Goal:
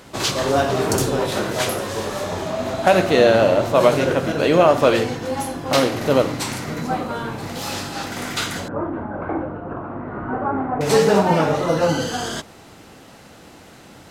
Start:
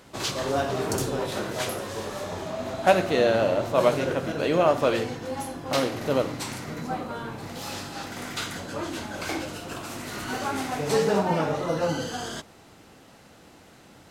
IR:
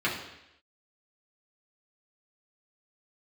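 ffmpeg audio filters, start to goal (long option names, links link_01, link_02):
-filter_complex "[0:a]asettb=1/sr,asplit=3[link_01][link_02][link_03];[link_01]atrim=end=8.684[link_04];[link_02]atrim=start=8.68:end=10.81,asetpts=PTS-STARTPTS,afade=type=in:duration=0.004:curve=qsin,afade=type=out:start_time=2.126:duration=0.004:curve=qsin,lowpass=frequency=1300:width=0.5412,lowpass=frequency=1300:width=1.3066[link_05];[link_03]atrim=start=10.806[link_06];[link_04][link_05]acrossfade=duration=0.004:curve1=hsin:curve2=qsin[link_07];[link_07][link_06]acrossfade=duration=0.004:curve1=qsin:curve2=hsin,alimiter=level_in=8.5dB:limit=-1dB:release=50:level=0:latency=1,volume=-1dB"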